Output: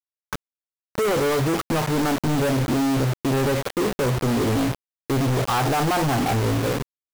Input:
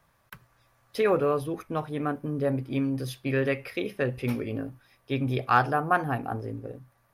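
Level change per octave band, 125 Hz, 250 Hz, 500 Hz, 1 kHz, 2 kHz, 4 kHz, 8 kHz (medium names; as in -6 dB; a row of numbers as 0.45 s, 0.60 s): +8.5 dB, +7.5 dB, +5.0 dB, +4.0 dB, +3.0 dB, +12.5 dB, +19.5 dB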